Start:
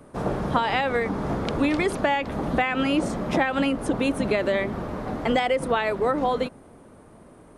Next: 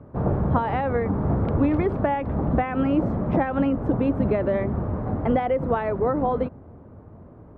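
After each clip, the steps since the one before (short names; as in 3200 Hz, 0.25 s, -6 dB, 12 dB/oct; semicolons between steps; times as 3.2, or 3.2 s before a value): LPF 1200 Hz 12 dB/oct; bell 89 Hz +13 dB 1.4 oct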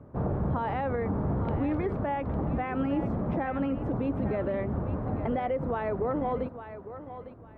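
limiter -16.5 dBFS, peak gain reduction 7.5 dB; thinning echo 0.854 s, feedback 25%, high-pass 400 Hz, level -10.5 dB; gain -4.5 dB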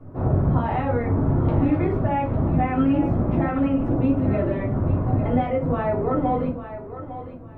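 shoebox room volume 170 m³, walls furnished, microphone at 3.2 m; gain -1.5 dB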